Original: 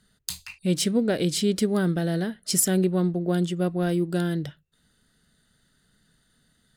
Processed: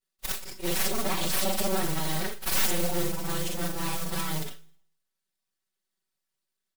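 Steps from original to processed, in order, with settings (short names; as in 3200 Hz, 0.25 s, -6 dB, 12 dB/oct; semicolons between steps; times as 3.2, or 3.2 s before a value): short-time reversal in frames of 0.12 s; gate with hold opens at -55 dBFS; formant-preserving pitch shift -1 st; high shelf 2600 Hz +10 dB; soft clip -18 dBFS, distortion -12 dB; modulation noise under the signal 11 dB; full-wave rectifier; low shelf 62 Hz -8.5 dB; comb 5.3 ms, depth 81%; reverb RT60 0.65 s, pre-delay 34 ms, DRR 17.5 dB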